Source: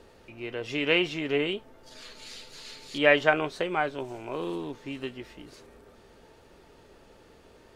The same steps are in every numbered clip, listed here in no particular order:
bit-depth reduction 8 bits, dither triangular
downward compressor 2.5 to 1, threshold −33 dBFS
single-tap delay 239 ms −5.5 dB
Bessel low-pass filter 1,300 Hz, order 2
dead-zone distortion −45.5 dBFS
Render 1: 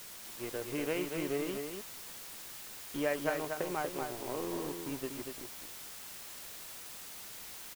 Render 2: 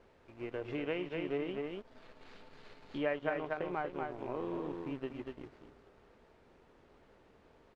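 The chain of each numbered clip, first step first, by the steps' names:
Bessel low-pass filter, then downward compressor, then dead-zone distortion, then bit-depth reduction, then single-tap delay
single-tap delay, then bit-depth reduction, then downward compressor, then dead-zone distortion, then Bessel low-pass filter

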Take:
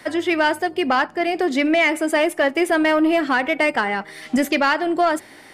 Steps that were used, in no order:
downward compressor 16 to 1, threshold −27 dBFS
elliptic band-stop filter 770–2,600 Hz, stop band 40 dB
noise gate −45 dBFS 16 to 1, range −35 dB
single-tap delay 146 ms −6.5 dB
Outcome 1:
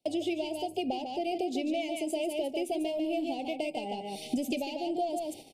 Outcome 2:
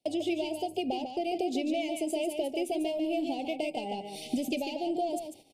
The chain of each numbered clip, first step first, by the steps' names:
single-tap delay, then downward compressor, then elliptic band-stop filter, then noise gate
downward compressor, then elliptic band-stop filter, then noise gate, then single-tap delay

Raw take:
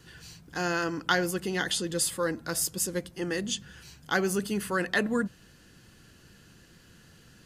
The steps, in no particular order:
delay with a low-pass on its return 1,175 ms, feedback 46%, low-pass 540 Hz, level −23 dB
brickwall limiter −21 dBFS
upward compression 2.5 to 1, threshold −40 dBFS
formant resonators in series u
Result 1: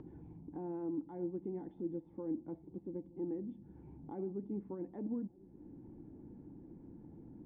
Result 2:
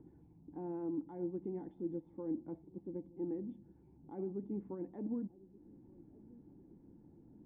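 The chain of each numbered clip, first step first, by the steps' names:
brickwall limiter, then formant resonators in series, then upward compression, then delay with a low-pass on its return
upward compression, then delay with a low-pass on its return, then brickwall limiter, then formant resonators in series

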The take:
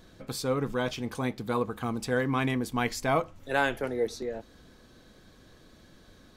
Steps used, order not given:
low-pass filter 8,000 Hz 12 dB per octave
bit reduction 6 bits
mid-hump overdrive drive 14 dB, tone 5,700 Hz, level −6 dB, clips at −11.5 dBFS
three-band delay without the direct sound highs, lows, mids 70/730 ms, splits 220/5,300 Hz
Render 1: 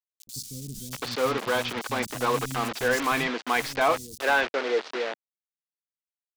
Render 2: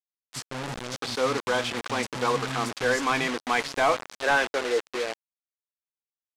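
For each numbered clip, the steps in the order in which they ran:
low-pass filter, then bit reduction, then mid-hump overdrive, then three-band delay without the direct sound
three-band delay without the direct sound, then bit reduction, then mid-hump overdrive, then low-pass filter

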